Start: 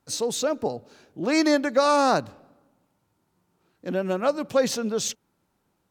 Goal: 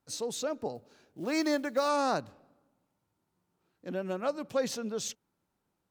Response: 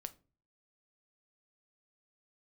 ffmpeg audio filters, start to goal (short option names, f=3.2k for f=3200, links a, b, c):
-filter_complex "[0:a]asettb=1/sr,asplit=3[a][b][c];[a]atrim=end=0.754[d];[b]atrim=start=0.75:end=1.89,asetpts=PTS-STARTPTS,afade=t=in:d=0.004:c=qsin,afade=t=out:st=1.136:d=0.004:c=qsin,acrusher=bits=7:mode=log:mix=0:aa=0.000001[e];[c]atrim=start=1.886[f];[d][e]acrossfade=d=0.004:c1=hsin:c2=qsin[g];[g][f]acrossfade=d=0.004:c1=qsin:c2=hsin,volume=-8.5dB"